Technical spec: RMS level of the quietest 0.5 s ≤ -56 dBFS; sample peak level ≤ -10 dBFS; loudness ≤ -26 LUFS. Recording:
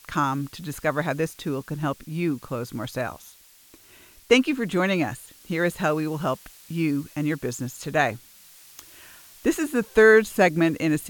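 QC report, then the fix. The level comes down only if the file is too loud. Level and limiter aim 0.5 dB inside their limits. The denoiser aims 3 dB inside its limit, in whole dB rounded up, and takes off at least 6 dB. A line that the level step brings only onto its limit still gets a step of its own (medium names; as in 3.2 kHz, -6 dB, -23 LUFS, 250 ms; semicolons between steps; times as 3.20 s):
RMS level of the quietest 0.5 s -53 dBFS: fail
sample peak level -5.0 dBFS: fail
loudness -24.0 LUFS: fail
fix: noise reduction 6 dB, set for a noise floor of -53 dBFS; trim -2.5 dB; peak limiter -10.5 dBFS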